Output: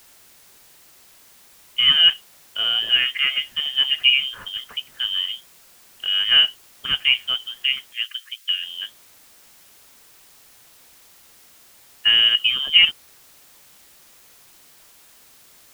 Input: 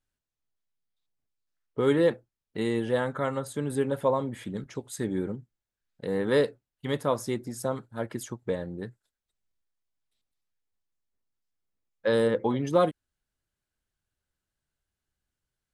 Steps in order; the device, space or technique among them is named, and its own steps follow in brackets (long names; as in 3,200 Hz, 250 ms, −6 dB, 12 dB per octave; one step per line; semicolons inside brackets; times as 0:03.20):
scrambled radio voice (band-pass filter 310–2,900 Hz; voice inversion scrambler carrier 3,400 Hz; white noise bed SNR 27 dB)
0:07.93–0:08.63: Bessel high-pass filter 2,100 Hz, order 8
level +9 dB